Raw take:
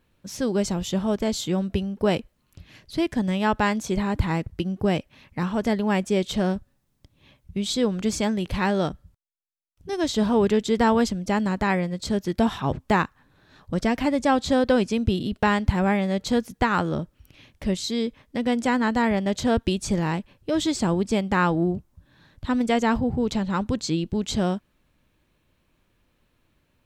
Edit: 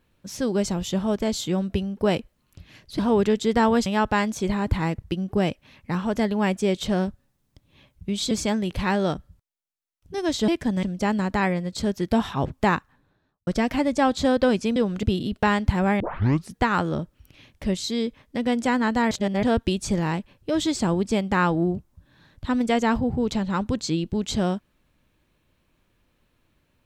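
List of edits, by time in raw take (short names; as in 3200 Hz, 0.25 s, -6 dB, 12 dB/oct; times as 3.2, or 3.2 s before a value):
2.99–3.34 swap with 10.23–11.1
7.79–8.06 move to 15.03
13–13.74 studio fade out
16 tape start 0.54 s
19.11–19.43 reverse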